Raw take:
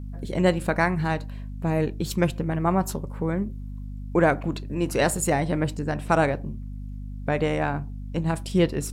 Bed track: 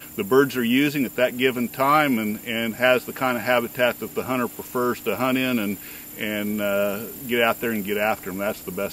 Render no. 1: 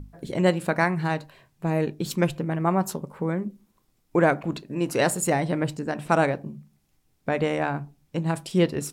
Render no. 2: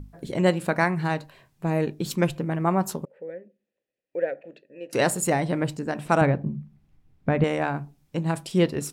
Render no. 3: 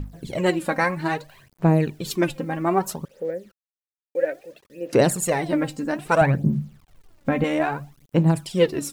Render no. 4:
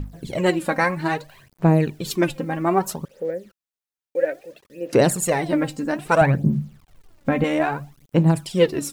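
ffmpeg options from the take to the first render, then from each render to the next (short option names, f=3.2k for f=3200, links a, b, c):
-af "bandreject=f=50:t=h:w=6,bandreject=f=100:t=h:w=6,bandreject=f=150:t=h:w=6,bandreject=f=200:t=h:w=6,bandreject=f=250:t=h:w=6"
-filter_complex "[0:a]asettb=1/sr,asplit=3[a][b][c];[a]atrim=end=3.054[d];[b]atrim=start=3.05:end=4.93,asetpts=PTS-STARTPTS,afade=t=in:d=0.004:c=qsin,afade=t=out:st=1.876:d=0.004:c=qsin,asplit=3[e][f][g];[e]bandpass=f=530:t=q:w=8,volume=0dB[h];[f]bandpass=f=1.84k:t=q:w=8,volume=-6dB[i];[g]bandpass=f=2.48k:t=q:w=8,volume=-9dB[j];[h][i][j]amix=inputs=3:normalize=0[k];[c]atrim=start=4.926[l];[d][k]acrossfade=d=0.004:c1=hsin:c2=qsin[m];[m][l]acrossfade=d=0.004:c1=qsin:c2=hsin,asettb=1/sr,asplit=3[n][o][p];[n]atrim=end=6.214[q];[o]atrim=start=6.21:end=7.44,asetpts=PTS-STARTPTS,afade=t=in:d=0.004:c=qsin,afade=t=out:st=1.226:d=0.004:c=qsin,bass=f=250:g=10,treble=f=4k:g=-14[r];[p]atrim=start=7.436[s];[q][r]acrossfade=d=0.004:c1=hsin:c2=qsin[t];[t][s]acrossfade=d=0.004:c1=qsin:c2=hsin"
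-af "acrusher=bits=9:mix=0:aa=0.000001,aphaser=in_gain=1:out_gain=1:delay=3.8:decay=0.65:speed=0.61:type=sinusoidal"
-af "volume=1.5dB,alimiter=limit=-3dB:level=0:latency=1"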